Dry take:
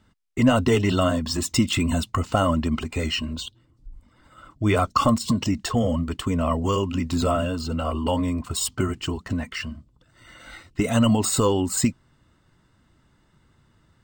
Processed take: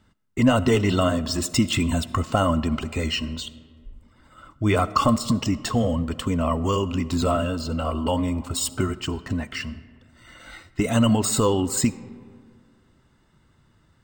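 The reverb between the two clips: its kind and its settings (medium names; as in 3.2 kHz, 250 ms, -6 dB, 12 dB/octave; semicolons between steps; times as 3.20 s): algorithmic reverb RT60 2 s, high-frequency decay 0.45×, pre-delay 25 ms, DRR 16.5 dB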